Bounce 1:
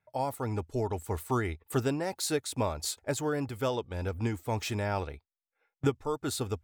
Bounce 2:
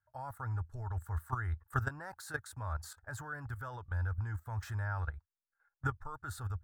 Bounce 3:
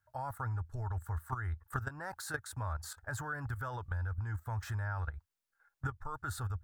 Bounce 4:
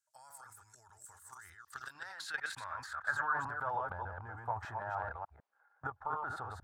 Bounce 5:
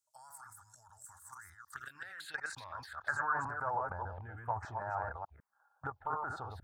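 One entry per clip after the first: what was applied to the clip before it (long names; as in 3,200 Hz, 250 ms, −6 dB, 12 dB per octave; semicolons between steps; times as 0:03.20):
output level in coarse steps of 13 dB; drawn EQ curve 100 Hz 0 dB, 200 Hz −20 dB, 420 Hz −23 dB, 1,600 Hz +2 dB, 2,300 Hz −24 dB, 16,000 Hz −14 dB; level +8 dB
downward compressor 5 to 1, threshold −39 dBFS, peak gain reduction 11 dB; level +5 dB
delay that plays each chunk backwards 150 ms, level −3 dB; band-pass filter sweep 7,500 Hz → 760 Hz, 0:01.25–0:03.76; transient designer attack +3 dB, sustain +7 dB; level +8 dB
phaser swept by the level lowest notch 310 Hz, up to 3,400 Hz, full sweep at −36 dBFS; level +2 dB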